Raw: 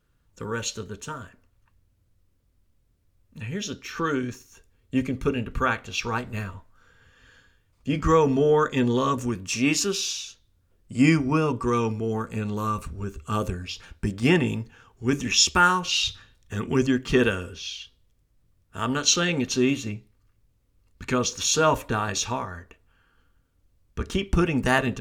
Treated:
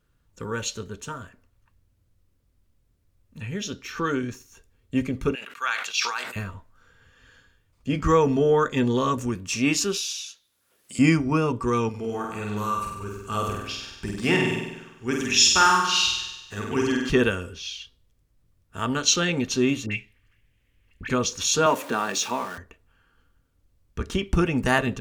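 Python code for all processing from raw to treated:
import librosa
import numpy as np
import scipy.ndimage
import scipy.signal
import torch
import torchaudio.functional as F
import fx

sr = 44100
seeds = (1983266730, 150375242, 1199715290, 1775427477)

y = fx.chain(x, sr, fx.highpass(hz=1300.0, slope=12),
    fx.dynamic_eq(hz=5000.0, q=1.4, threshold_db=-45.0, ratio=4.0, max_db=7),
    fx.sustainer(db_per_s=58.0), at=(5.35, 6.36))
y = fx.chain(y, sr, fx.highpass(hz=1400.0, slope=6),
    fx.peak_eq(hz=11000.0, db=8.5, octaves=0.26),
    fx.band_squash(depth_pct=70), at=(9.97, 10.99))
y = fx.chain(y, sr, fx.low_shelf(hz=300.0, db=-9.0),
    fx.room_flutter(wall_m=8.3, rt60_s=0.97), at=(11.89, 17.1))
y = fx.chain(y, sr, fx.band_shelf(hz=2300.0, db=14.5, octaves=1.2),
    fx.dispersion(late='highs', ms=55.0, hz=1400.0), at=(19.86, 21.1))
y = fx.chain(y, sr, fx.zero_step(step_db=-35.5),
    fx.highpass(hz=190.0, slope=24), at=(21.66, 22.58))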